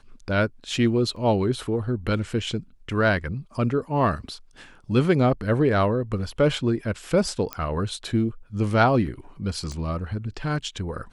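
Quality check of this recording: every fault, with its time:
1.16 s: dropout 4.2 ms
7.53 s: pop -12 dBFS
9.72 s: pop -23 dBFS

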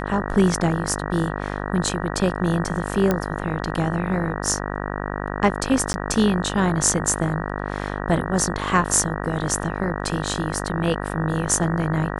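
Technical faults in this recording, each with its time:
buzz 50 Hz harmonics 38 -28 dBFS
3.11 s: pop -7 dBFS
5.93–5.94 s: dropout 10 ms

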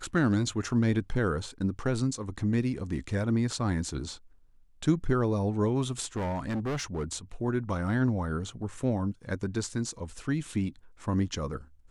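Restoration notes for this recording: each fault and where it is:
6.16–7.12 s: clipped -28 dBFS

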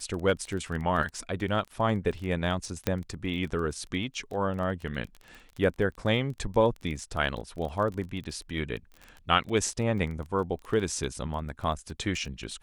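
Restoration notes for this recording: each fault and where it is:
crackle 16 per s -34 dBFS
2.87 s: pop -11 dBFS

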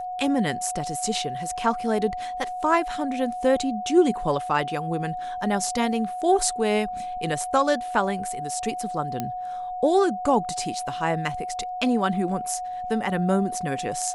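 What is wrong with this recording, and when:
whine 730 Hz -29 dBFS
9.20 s: pop -13 dBFS

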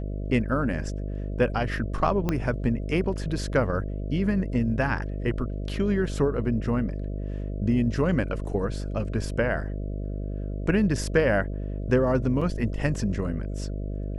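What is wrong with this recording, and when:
buzz 50 Hz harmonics 13 -31 dBFS
2.29 s: pop -12 dBFS
12.41 s: dropout 4.9 ms

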